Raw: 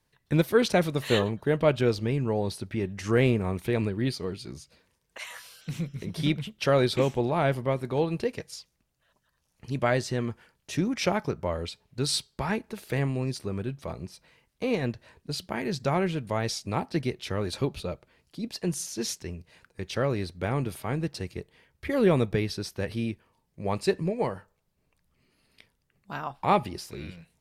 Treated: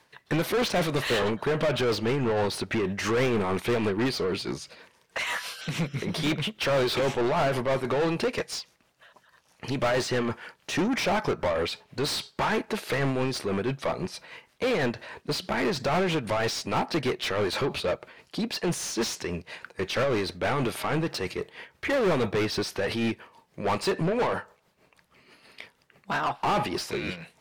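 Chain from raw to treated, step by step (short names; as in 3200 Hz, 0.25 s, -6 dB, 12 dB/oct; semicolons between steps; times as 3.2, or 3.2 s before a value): tremolo 6.2 Hz, depth 56%; overdrive pedal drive 33 dB, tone 2500 Hz, clips at -11.5 dBFS; gain -5.5 dB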